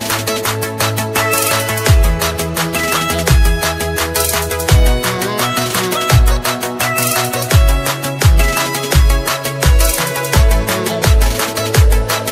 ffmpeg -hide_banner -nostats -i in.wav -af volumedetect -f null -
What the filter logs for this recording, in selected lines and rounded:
mean_volume: -13.0 dB
max_volume: -1.2 dB